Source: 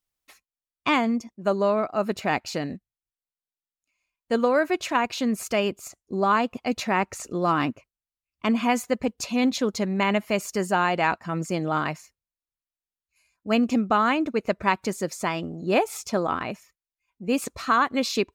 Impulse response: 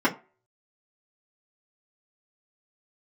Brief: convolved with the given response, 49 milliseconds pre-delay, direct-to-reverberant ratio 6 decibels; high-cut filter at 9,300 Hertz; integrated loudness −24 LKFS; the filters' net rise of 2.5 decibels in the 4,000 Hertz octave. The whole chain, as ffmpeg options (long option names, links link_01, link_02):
-filter_complex "[0:a]lowpass=9300,equalizer=frequency=4000:width_type=o:gain=3.5,asplit=2[link_01][link_02];[1:a]atrim=start_sample=2205,adelay=49[link_03];[link_02][link_03]afir=irnorm=-1:irlink=0,volume=-21.5dB[link_04];[link_01][link_04]amix=inputs=2:normalize=0,volume=-1dB"